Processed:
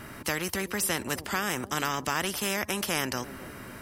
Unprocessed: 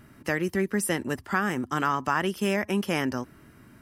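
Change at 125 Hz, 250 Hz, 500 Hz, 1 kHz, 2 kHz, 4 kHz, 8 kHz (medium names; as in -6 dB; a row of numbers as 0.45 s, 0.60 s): -5.0 dB, -6.5 dB, -5.0 dB, -3.5 dB, -1.5 dB, +5.0 dB, +5.5 dB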